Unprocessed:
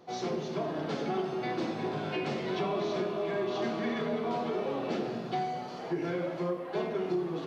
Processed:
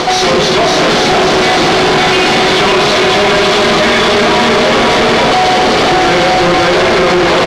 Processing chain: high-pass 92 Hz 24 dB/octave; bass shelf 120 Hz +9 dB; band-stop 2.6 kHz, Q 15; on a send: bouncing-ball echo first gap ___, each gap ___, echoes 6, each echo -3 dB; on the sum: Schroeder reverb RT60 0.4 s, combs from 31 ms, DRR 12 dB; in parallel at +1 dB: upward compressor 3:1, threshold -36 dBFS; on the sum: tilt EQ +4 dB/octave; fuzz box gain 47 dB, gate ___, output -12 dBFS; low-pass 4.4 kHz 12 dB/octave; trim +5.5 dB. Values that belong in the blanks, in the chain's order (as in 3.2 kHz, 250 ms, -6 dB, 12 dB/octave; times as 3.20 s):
550 ms, 0.6×, -47 dBFS